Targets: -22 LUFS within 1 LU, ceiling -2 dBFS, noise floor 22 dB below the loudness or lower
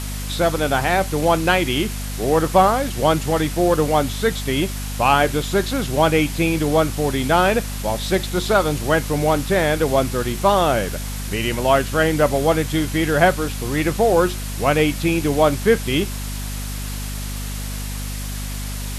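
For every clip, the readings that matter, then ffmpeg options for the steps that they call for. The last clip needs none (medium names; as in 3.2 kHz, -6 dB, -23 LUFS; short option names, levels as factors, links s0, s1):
hum 50 Hz; highest harmonic 250 Hz; hum level -25 dBFS; noise floor -27 dBFS; noise floor target -42 dBFS; loudness -19.5 LUFS; peak level -2.0 dBFS; loudness target -22.0 LUFS
-> -af "bandreject=f=50:t=h:w=6,bandreject=f=100:t=h:w=6,bandreject=f=150:t=h:w=6,bandreject=f=200:t=h:w=6,bandreject=f=250:t=h:w=6"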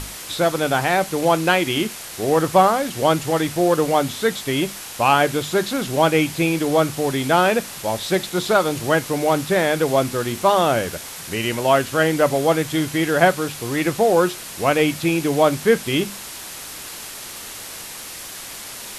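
hum not found; noise floor -35 dBFS; noise floor target -42 dBFS
-> -af "afftdn=nr=7:nf=-35"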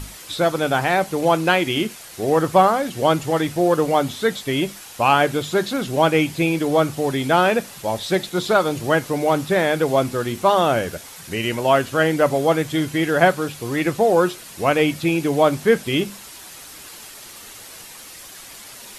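noise floor -40 dBFS; noise floor target -42 dBFS
-> -af "afftdn=nr=6:nf=-40"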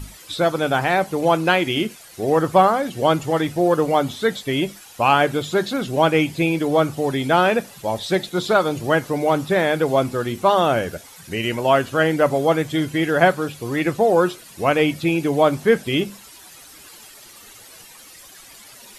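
noise floor -44 dBFS; loudness -19.5 LUFS; peak level -2.5 dBFS; loudness target -22.0 LUFS
-> -af "volume=0.75"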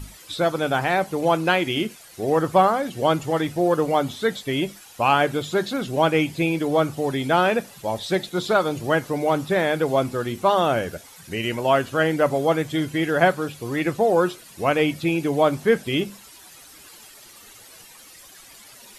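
loudness -22.0 LUFS; peak level -5.0 dBFS; noise floor -47 dBFS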